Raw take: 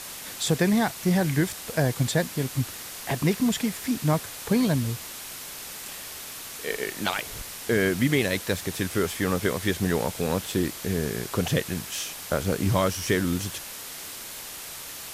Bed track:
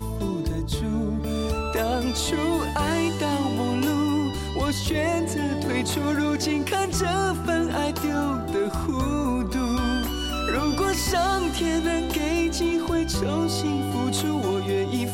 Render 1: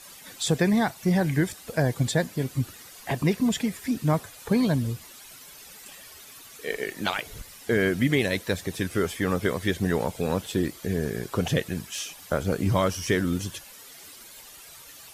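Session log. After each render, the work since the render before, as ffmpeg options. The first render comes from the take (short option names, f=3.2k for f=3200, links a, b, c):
-af "afftdn=nr=12:nf=-39"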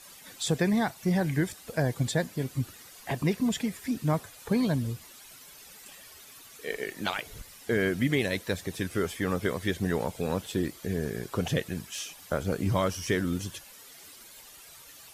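-af "volume=-3.5dB"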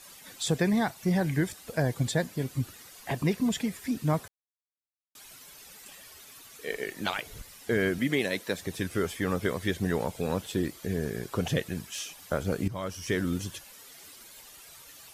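-filter_complex "[0:a]asettb=1/sr,asplit=3[a][b][c];[a]atrim=end=7.984[d];[b]atrim=start=7.98:end=8.59,asetpts=PTS-STARTPTS,afade=t=in:d=0.004:c=qsin,afade=t=out:st=0.606:d=0.004:c=qsin,highpass=180[e];[c]atrim=start=8.586[f];[d][e]acrossfade=d=0.004:c1=hsin:c2=qsin[g];[g][f]acrossfade=d=0.004:c1=qsin:c2=hsin,asplit=4[h][i][j][k];[h]atrim=end=4.28,asetpts=PTS-STARTPTS,afade=t=out:st=4.276:d=0.004:c=hsin[l];[i]atrim=start=4.28:end=5.15,asetpts=PTS-STARTPTS,volume=0[m];[j]atrim=start=5.15:end=12.68,asetpts=PTS-STARTPTS,afade=t=in:d=0.004:c=hsin,afade=t=out:st=7.526:d=0.004:c=hsin:silence=0.188365[n];[k]atrim=start=12.68,asetpts=PTS-STARTPTS,afade=t=in:d=0.56:silence=0.188365[o];[l][m][n][o]concat=n=4:v=0:a=1"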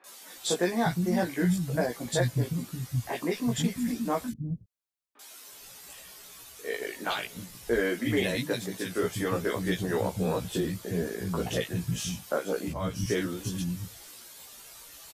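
-filter_complex "[0:a]asplit=2[a][b];[b]adelay=17,volume=-2.5dB[c];[a][c]amix=inputs=2:normalize=0,acrossover=split=230|2000[d][e][f];[f]adelay=40[g];[d]adelay=360[h];[h][e][g]amix=inputs=3:normalize=0"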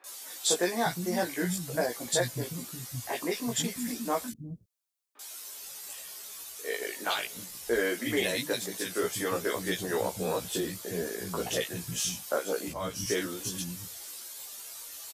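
-af "bass=f=250:g=-10,treble=f=4k:g=6"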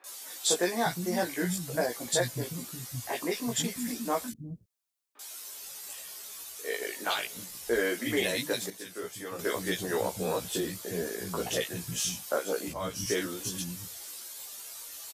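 -filter_complex "[0:a]asplit=3[a][b][c];[a]atrim=end=8.702[d];[b]atrim=start=8.698:end=9.392,asetpts=PTS-STARTPTS,volume=-8.5dB[e];[c]atrim=start=9.388[f];[d][e]acrossfade=d=0.004:c1=hsin:c2=hsin[g];[g][f]acrossfade=d=0.004:c1=hsin:c2=hsin"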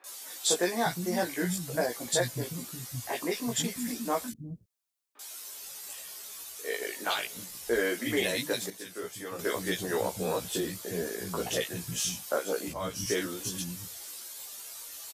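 -af anull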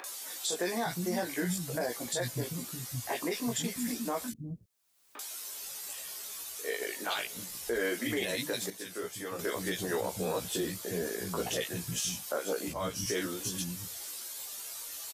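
-af "acompressor=mode=upward:threshold=-37dB:ratio=2.5,alimiter=limit=-22.5dB:level=0:latency=1:release=70"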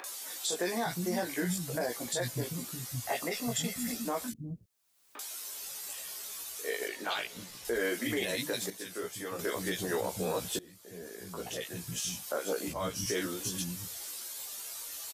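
-filter_complex "[0:a]asettb=1/sr,asplit=3[a][b][c];[a]atrim=end=3.074[d];[b]atrim=start=3.07:end=4.05,asetpts=PTS-STARTPTS,afade=t=in:d=0.004:c=qsin,afade=t=out:st=0.976:d=0.004:c=qsin,aecho=1:1:1.5:0.5,atrim=end_sample=43218[e];[c]atrim=start=4.046[f];[d][e]acrossfade=d=0.004:c1=hsin:c2=qsin[g];[g][f]acrossfade=d=0.004:c1=qsin:c2=hsin,asettb=1/sr,asplit=3[h][i][j];[h]atrim=end=6.884[k];[i]atrim=start=6.88:end=7.65,asetpts=PTS-STARTPTS,afade=t=in:d=0.004:c=qsin,afade=t=out:st=0.766:d=0.004:c=qsin,acrossover=split=5400[l][m];[m]acompressor=threshold=-50dB:ratio=4:attack=1:release=60[n];[l][n]amix=inputs=2:normalize=0[o];[j]atrim=start=7.646[p];[k][o]acrossfade=d=0.004:c1=hsin:c2=qsin[q];[q][p]acrossfade=d=0.004:c1=qsin:c2=hsin,asplit=2[r][s];[r]atrim=end=10.59,asetpts=PTS-STARTPTS,afade=t=out:st=10.586:d=0.004:c=hsin:silence=0.0707946[t];[s]atrim=start=10.59,asetpts=PTS-STARTPTS,afade=t=in:d=1.88:silence=0.0707946[u];[t][u]concat=n=2:v=0:a=1"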